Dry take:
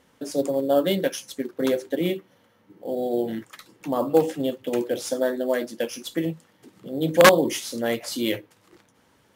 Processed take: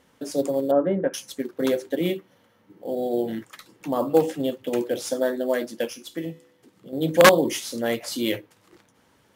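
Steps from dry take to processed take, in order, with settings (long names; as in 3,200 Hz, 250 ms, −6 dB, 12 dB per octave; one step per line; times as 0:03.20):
0:00.71–0:01.14: low-pass filter 1,600 Hz 24 dB per octave
0:05.93–0:06.93: tuned comb filter 71 Hz, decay 0.93 s, harmonics all, mix 50%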